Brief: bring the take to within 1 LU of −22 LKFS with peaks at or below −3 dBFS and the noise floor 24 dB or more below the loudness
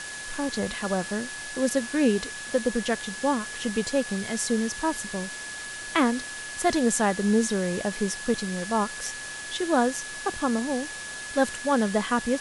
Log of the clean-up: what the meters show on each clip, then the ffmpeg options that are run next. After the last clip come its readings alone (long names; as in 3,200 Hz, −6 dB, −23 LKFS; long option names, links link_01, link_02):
interfering tone 1,700 Hz; level of the tone −37 dBFS; background noise floor −37 dBFS; target noise floor −51 dBFS; integrated loudness −27.0 LKFS; sample peak −8.0 dBFS; target loudness −22.0 LKFS
→ -af "bandreject=frequency=1700:width=30"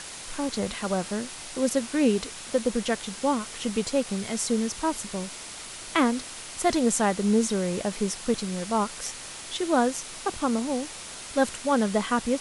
interfering tone none found; background noise floor −40 dBFS; target noise floor −51 dBFS
→ -af "afftdn=noise_reduction=11:noise_floor=-40"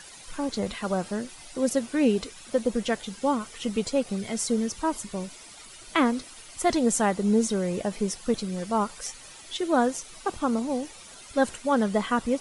background noise floor −47 dBFS; target noise floor −52 dBFS
→ -af "afftdn=noise_reduction=6:noise_floor=-47"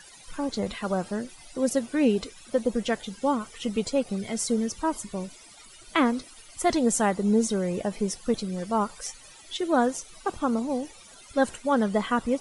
background noise floor −50 dBFS; target noise floor −52 dBFS
→ -af "afftdn=noise_reduction=6:noise_floor=-50"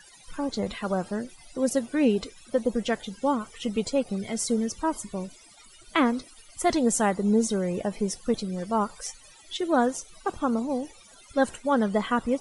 background noise floor −53 dBFS; integrated loudness −27.5 LKFS; sample peak −9.5 dBFS; target loudness −22.0 LKFS
→ -af "volume=5.5dB"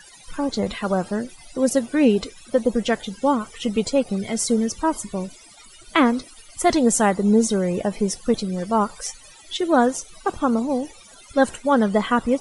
integrated loudness −22.0 LKFS; sample peak −4.0 dBFS; background noise floor −47 dBFS